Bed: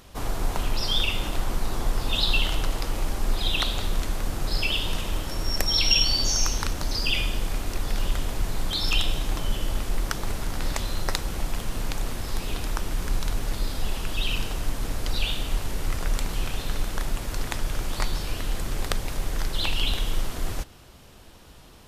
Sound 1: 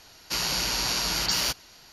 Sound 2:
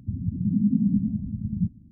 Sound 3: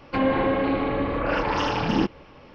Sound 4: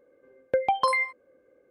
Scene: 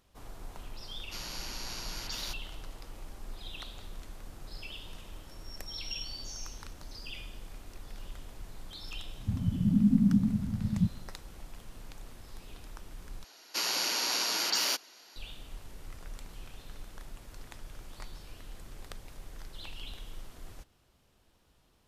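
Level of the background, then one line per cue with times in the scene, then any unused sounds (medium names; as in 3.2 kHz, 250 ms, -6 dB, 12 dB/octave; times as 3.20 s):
bed -18.5 dB
0.81 s: add 1 -14.5 dB
9.20 s: add 2 -2 dB
13.24 s: replace with 1 -3.5 dB + high-pass 260 Hz 24 dB/octave
not used: 3, 4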